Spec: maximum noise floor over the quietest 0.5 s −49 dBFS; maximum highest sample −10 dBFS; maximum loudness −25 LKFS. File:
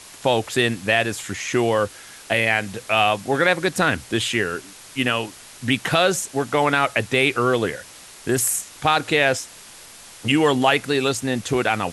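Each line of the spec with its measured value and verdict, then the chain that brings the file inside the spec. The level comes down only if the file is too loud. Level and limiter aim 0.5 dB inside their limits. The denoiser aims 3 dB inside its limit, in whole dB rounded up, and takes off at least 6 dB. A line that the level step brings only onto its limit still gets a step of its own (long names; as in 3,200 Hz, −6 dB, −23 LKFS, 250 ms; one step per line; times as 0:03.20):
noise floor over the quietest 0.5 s −43 dBFS: out of spec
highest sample −5.0 dBFS: out of spec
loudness −20.5 LKFS: out of spec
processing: broadband denoise 6 dB, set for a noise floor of −43 dBFS
level −5 dB
brickwall limiter −10.5 dBFS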